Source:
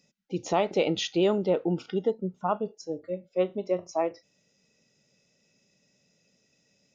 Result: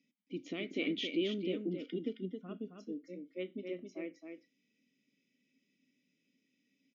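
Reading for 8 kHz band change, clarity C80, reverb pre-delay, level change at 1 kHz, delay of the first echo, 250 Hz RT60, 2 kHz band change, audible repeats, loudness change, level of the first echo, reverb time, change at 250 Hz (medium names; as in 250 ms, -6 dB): no reading, no reverb, no reverb, -29.0 dB, 268 ms, no reverb, -5.0 dB, 1, -11.0 dB, -6.0 dB, no reverb, -7.0 dB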